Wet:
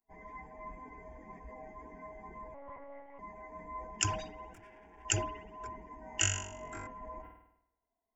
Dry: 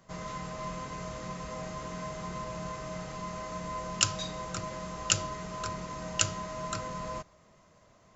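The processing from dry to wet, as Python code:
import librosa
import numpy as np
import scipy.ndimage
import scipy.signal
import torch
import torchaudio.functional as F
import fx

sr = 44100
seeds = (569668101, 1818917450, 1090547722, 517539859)

y = fx.bin_expand(x, sr, power=2.0)
y = fx.tube_stage(y, sr, drive_db=49.0, bias=0.75, at=(4.53, 5.05))
y = fx.fixed_phaser(y, sr, hz=820.0, stages=8)
y = fx.room_flutter(y, sr, wall_m=3.6, rt60_s=0.65, at=(6.01, 6.87))
y = fx.rev_spring(y, sr, rt60_s=1.5, pass_ms=(50,), chirp_ms=55, drr_db=19.5)
y = fx.lpc_monotone(y, sr, seeds[0], pitch_hz=280.0, order=10, at=(2.54, 3.19))
y = fx.sustainer(y, sr, db_per_s=76.0)
y = y * librosa.db_to_amplitude(1.0)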